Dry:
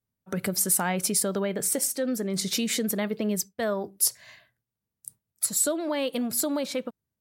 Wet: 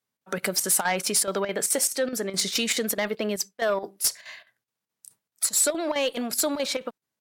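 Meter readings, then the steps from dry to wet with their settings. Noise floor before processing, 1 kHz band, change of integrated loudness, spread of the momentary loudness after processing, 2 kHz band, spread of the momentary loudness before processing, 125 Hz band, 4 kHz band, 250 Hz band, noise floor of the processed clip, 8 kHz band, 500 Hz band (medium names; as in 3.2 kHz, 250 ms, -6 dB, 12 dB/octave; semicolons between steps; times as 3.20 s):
under -85 dBFS, +3.5 dB, +1.5 dB, 7 LU, +5.5 dB, 10 LU, -5.5 dB, +5.0 dB, -3.5 dB, under -85 dBFS, +2.0 dB, +2.0 dB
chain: frequency weighting A; Chebyshev shaper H 5 -12 dB, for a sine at -12.5 dBFS; square tremolo 4.7 Hz, depth 65%, duty 80%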